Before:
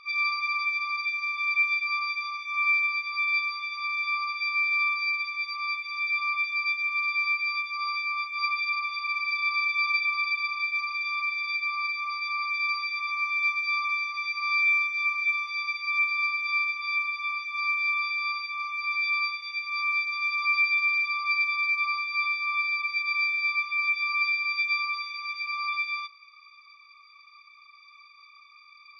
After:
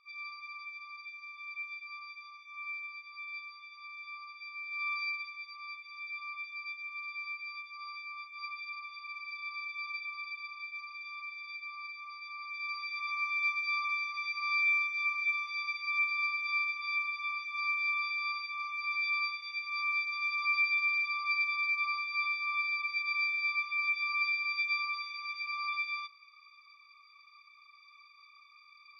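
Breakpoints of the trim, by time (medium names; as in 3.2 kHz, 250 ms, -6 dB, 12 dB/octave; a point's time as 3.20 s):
4.65 s -17 dB
4.96 s -6 dB
5.44 s -14 dB
12.38 s -14 dB
13.09 s -5.5 dB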